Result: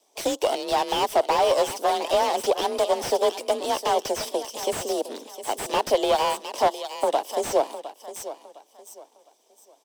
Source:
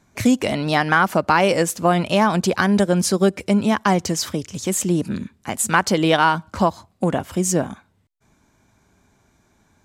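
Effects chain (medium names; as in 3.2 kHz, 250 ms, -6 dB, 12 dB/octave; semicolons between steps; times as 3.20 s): comb filter that takes the minimum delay 0.36 ms; high-pass 410 Hz 24 dB/octave; frequency shift +34 Hz; high-order bell 1.8 kHz -13 dB 1.3 oct; in parallel at -1.5 dB: peak limiter -15 dBFS, peak gain reduction 6 dB; on the sum: harmonic-percussive split harmonic -5 dB; on a send: feedback delay 709 ms, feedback 30%, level -14 dB; on the sum: slew-rate limiter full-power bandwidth 160 Hz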